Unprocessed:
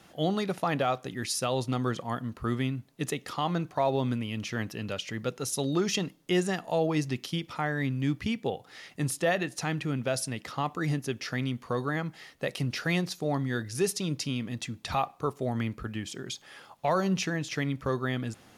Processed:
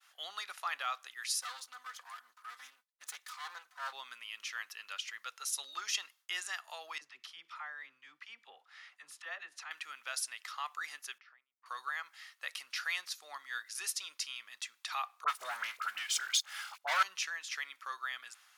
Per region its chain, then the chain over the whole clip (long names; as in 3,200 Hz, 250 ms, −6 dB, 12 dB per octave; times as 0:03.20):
0:01.41–0:03.93: lower of the sound and its delayed copy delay 4 ms + parametric band 2,600 Hz −4.5 dB 0.59 octaves + transient designer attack −8 dB, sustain −2 dB
0:06.98–0:09.71: RIAA equalisation playback + downward compressor 1.5 to 1, threshold −34 dBFS + all-pass dispersion lows, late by 44 ms, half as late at 640 Hz
0:11.18–0:11.66: downward compressor 10 to 1, threshold −43 dBFS + head-to-tape spacing loss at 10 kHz 43 dB
0:15.24–0:17.03: comb filter 1.4 ms, depth 46% + leveller curve on the samples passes 3 + all-pass dispersion highs, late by 42 ms, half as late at 1,300 Hz
whole clip: Chebyshev high-pass filter 1,200 Hz, order 3; downward expander −58 dBFS; level −2.5 dB